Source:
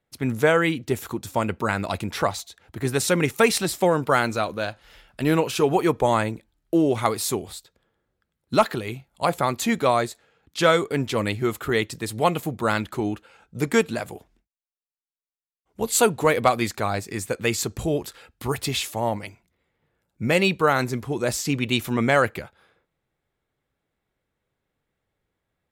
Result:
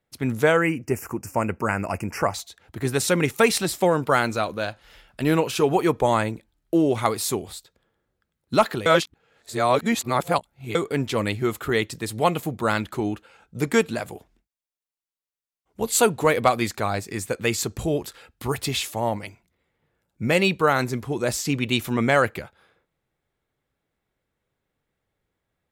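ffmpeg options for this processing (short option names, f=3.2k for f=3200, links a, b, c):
-filter_complex "[0:a]asettb=1/sr,asplit=3[a][b][c];[a]atrim=end=0.574[d];[b]atrim=start=0.57:end=2.34,asetpts=PTS-STARTPTS,afade=t=in:d=0.004:c=qsin,afade=t=out:st=1.766:d=0.004:c=qsin,asuperstop=centerf=3700:order=8:qfactor=1.8[e];[c]atrim=start=2.336[f];[d][e]acrossfade=d=0.004:c1=hsin:c2=qsin[g];[g][f]acrossfade=d=0.004:c1=qsin:c2=hsin,asplit=3[h][i][j];[h]atrim=end=8.862[k];[i]atrim=start=8.858:end=10.752,asetpts=PTS-STARTPTS,areverse[l];[j]atrim=start=10.748[m];[k][l]acrossfade=d=0.004:c1=hsin:c2=hsin[n];[n][m]acrossfade=d=0.004:c1=hsin:c2=hsin"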